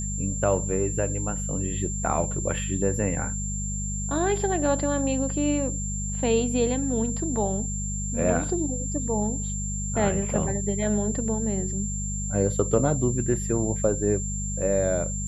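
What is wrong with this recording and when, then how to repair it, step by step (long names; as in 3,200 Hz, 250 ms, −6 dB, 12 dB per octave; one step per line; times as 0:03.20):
mains hum 50 Hz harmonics 4 −31 dBFS
whistle 7,300 Hz −32 dBFS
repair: notch filter 7,300 Hz, Q 30
hum removal 50 Hz, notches 4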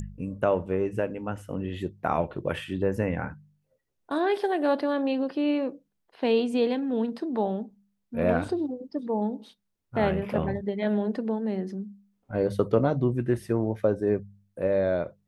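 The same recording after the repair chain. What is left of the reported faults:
none of them is left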